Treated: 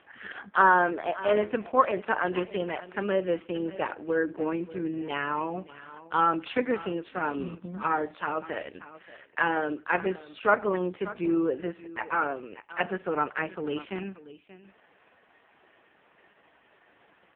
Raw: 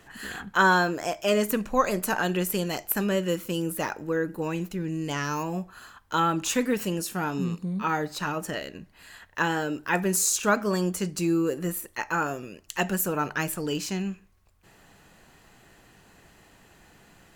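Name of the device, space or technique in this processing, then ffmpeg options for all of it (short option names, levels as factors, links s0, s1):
satellite phone: -filter_complex "[0:a]asplit=3[s0][s1][s2];[s0]afade=t=out:st=4.23:d=0.02[s3];[s1]adynamicequalizer=threshold=0.00562:dfrequency=290:dqfactor=3.3:tfrequency=290:tqfactor=3.3:attack=5:release=100:ratio=0.375:range=3:mode=boostabove:tftype=bell,afade=t=in:st=4.23:d=0.02,afade=t=out:st=4.9:d=0.02[s4];[s2]afade=t=in:st=4.9:d=0.02[s5];[s3][s4][s5]amix=inputs=3:normalize=0,highpass=330,lowpass=3200,aecho=1:1:583:0.15,volume=1.26" -ar 8000 -c:a libopencore_amrnb -b:a 4750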